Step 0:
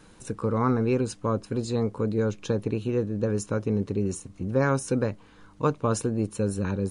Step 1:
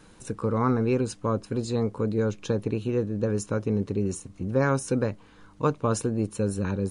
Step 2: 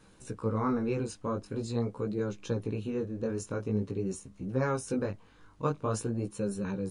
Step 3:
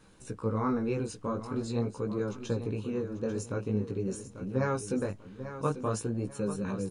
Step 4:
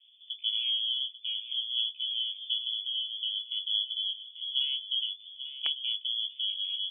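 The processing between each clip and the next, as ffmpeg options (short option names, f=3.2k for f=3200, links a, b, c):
-af anull
-af "flanger=delay=15:depth=7.3:speed=0.46,volume=-3dB"
-af "aecho=1:1:842|1684|2526:0.266|0.0851|0.0272"
-filter_complex "[0:a]acrossover=split=680[a][b];[b]acrusher=bits=3:mix=0:aa=0.000001[c];[a][c]amix=inputs=2:normalize=0,lowpass=f=3k:t=q:w=0.5098,lowpass=f=3k:t=q:w=0.6013,lowpass=f=3k:t=q:w=0.9,lowpass=f=3k:t=q:w=2.563,afreqshift=-3500"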